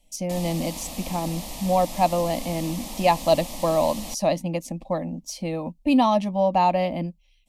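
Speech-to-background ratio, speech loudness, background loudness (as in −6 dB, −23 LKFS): 11.0 dB, −24.5 LKFS, −35.5 LKFS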